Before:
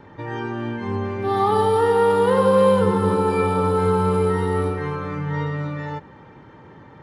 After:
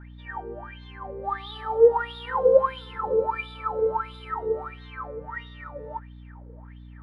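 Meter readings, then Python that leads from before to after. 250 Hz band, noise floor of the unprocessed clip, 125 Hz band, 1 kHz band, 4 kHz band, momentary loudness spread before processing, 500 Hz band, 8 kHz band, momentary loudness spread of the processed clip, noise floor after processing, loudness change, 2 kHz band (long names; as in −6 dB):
−20.5 dB, −46 dBFS, −18.0 dB, −7.0 dB, −5.0 dB, 12 LU, −4.5 dB, below −25 dB, 20 LU, −44 dBFS, −5.0 dB, −5.5 dB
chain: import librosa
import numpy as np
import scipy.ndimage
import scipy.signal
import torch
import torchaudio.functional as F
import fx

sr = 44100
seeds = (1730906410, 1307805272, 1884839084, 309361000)

y = fx.wah_lfo(x, sr, hz=1.5, low_hz=460.0, high_hz=3700.0, q=14.0)
y = fx.add_hum(y, sr, base_hz=60, snr_db=17)
y = y * 10.0 ** (7.5 / 20.0)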